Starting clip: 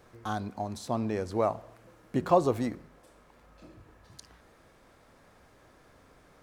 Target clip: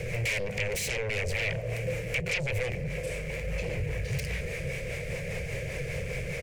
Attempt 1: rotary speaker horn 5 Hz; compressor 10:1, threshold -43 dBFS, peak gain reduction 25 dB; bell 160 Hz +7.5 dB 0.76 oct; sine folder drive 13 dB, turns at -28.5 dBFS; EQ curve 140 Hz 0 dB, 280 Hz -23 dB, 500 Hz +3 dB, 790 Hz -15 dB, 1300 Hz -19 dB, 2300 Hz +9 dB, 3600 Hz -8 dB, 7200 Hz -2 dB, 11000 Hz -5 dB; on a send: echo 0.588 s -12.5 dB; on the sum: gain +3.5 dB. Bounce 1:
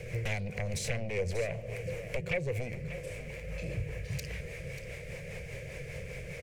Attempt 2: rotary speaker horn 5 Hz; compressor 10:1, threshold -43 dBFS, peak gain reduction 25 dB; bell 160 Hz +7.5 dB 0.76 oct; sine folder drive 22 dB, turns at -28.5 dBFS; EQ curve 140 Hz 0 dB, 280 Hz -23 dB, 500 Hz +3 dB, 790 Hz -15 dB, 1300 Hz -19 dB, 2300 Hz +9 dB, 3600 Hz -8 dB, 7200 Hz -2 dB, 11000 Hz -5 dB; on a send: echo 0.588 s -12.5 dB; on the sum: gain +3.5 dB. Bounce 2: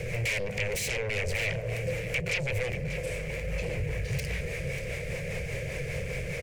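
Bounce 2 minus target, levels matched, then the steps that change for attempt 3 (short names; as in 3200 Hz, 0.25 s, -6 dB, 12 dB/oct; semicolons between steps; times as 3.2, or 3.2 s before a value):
echo-to-direct +8.5 dB
change: echo 0.588 s -21 dB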